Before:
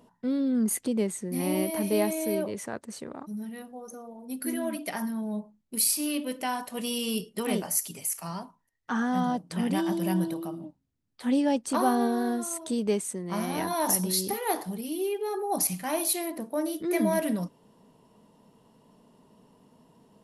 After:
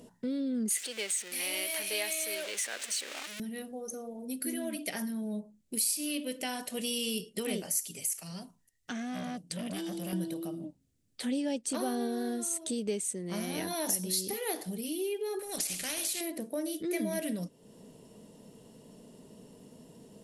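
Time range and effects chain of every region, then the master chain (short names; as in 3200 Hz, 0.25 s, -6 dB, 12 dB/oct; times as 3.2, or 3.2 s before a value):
0.7–3.4 zero-crossing step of -36 dBFS + Bessel high-pass 1000 Hz + bell 2400 Hz +7 dB 2.6 oct
8.23–10.13 bell 680 Hz -8.5 dB 2.8 oct + small resonant body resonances 730/2800 Hz, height 6 dB + core saturation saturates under 810 Hz
15.39–16.21 compressor, threshold -27 dBFS + spectral compressor 2:1
whole clip: ten-band EQ 500 Hz +4 dB, 1000 Hz -11 dB, 8000 Hz +7 dB; compressor 2:1, threshold -47 dBFS; dynamic EQ 2900 Hz, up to +5 dB, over -59 dBFS, Q 0.75; gain +5.5 dB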